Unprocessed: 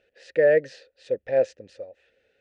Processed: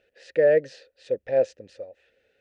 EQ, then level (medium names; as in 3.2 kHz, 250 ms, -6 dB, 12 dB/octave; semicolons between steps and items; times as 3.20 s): dynamic bell 1.9 kHz, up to -4 dB, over -42 dBFS, Q 1.7; 0.0 dB